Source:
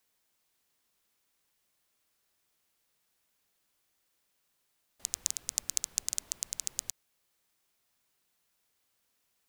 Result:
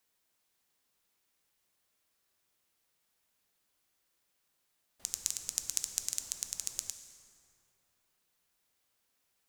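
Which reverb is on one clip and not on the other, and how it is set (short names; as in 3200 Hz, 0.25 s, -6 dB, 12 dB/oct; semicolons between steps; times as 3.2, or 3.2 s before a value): plate-style reverb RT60 2.8 s, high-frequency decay 0.55×, DRR 7 dB; gain -2 dB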